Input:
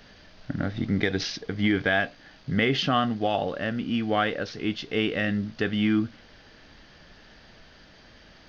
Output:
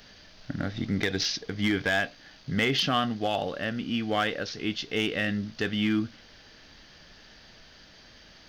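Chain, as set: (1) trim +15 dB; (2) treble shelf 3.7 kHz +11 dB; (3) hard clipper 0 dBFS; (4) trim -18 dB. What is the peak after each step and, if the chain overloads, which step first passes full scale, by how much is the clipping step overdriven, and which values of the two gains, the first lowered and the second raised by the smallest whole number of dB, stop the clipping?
+7.0 dBFS, +9.5 dBFS, 0.0 dBFS, -18.0 dBFS; step 1, 9.5 dB; step 1 +5 dB, step 4 -8 dB

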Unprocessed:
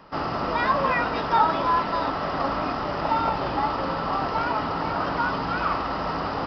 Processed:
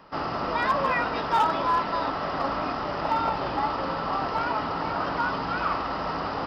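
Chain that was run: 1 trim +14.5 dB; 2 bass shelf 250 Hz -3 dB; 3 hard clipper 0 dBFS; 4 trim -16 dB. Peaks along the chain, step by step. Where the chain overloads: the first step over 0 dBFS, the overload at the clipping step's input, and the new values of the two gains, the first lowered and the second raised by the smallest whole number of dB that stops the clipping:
+6.5 dBFS, +6.0 dBFS, 0.0 dBFS, -16.0 dBFS; step 1, 6.0 dB; step 1 +8.5 dB, step 4 -10 dB

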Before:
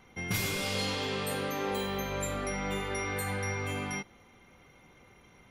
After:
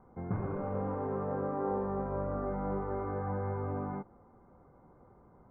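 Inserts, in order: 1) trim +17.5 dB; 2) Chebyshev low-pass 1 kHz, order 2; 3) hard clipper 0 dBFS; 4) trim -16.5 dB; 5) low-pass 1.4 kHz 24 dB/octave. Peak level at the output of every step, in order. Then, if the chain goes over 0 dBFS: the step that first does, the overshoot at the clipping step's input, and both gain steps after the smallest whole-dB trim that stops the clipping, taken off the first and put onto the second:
-1.5 dBFS, -5.0 dBFS, -5.0 dBFS, -21.5 dBFS, -22.0 dBFS; nothing clips

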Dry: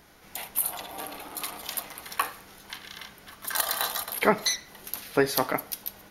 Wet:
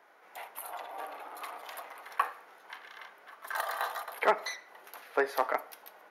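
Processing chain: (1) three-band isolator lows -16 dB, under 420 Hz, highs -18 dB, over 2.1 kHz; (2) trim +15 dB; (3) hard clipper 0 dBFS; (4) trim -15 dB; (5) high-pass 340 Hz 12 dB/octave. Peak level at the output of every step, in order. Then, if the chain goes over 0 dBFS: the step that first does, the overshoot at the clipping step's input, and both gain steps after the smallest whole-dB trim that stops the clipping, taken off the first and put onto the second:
-8.5 dBFS, +6.5 dBFS, 0.0 dBFS, -15.0 dBFS, -12.0 dBFS; step 2, 6.5 dB; step 2 +8 dB, step 4 -8 dB

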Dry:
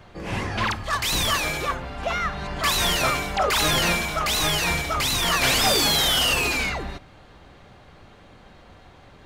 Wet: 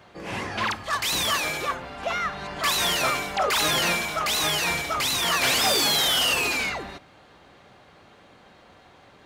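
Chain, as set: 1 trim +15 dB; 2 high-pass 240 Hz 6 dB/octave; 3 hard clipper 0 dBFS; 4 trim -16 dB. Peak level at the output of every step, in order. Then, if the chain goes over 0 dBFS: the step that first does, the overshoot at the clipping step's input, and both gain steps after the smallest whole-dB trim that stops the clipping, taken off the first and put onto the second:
+3.0 dBFS, +4.0 dBFS, 0.0 dBFS, -16.0 dBFS; step 1, 4.0 dB; step 1 +11 dB, step 4 -12 dB

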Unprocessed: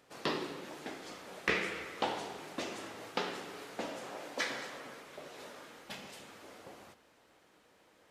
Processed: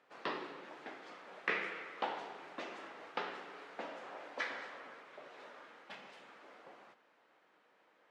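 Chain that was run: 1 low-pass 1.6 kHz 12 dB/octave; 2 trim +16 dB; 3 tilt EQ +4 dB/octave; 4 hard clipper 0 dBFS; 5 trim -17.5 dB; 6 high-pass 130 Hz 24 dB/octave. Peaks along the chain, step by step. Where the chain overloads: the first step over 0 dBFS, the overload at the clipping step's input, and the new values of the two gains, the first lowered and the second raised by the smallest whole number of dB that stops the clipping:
-19.5 dBFS, -3.5 dBFS, -2.5 dBFS, -2.5 dBFS, -20.0 dBFS, -20.0 dBFS; nothing clips

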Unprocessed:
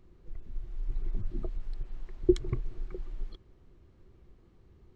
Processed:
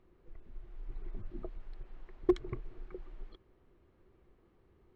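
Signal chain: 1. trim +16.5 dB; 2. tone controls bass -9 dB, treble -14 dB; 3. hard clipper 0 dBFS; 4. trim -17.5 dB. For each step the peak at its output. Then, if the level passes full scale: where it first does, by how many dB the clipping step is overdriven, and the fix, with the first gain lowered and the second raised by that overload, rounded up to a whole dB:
+7.5 dBFS, +4.5 dBFS, 0.0 dBFS, -17.5 dBFS; step 1, 4.5 dB; step 1 +11.5 dB, step 4 -12.5 dB

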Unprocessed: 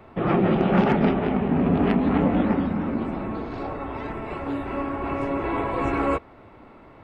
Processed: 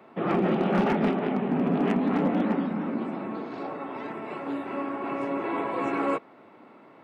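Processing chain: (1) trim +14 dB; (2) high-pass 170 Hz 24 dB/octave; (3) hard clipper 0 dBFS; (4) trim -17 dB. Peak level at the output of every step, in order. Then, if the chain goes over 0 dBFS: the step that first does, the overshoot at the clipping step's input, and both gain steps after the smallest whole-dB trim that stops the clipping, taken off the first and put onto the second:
+6.5 dBFS, +6.5 dBFS, 0.0 dBFS, -17.0 dBFS; step 1, 6.5 dB; step 1 +7 dB, step 4 -10 dB

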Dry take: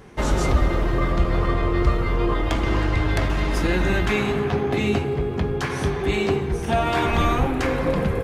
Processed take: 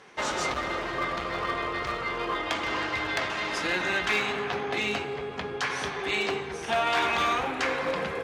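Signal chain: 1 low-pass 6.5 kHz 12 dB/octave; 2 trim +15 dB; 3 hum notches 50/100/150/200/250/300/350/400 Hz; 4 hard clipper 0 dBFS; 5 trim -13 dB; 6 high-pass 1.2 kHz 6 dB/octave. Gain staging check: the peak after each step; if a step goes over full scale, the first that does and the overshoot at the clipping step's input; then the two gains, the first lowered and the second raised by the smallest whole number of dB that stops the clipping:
-6.5 dBFS, +8.5 dBFS, +8.0 dBFS, 0.0 dBFS, -13.0 dBFS, -12.5 dBFS; step 2, 8.0 dB; step 2 +7 dB, step 5 -5 dB

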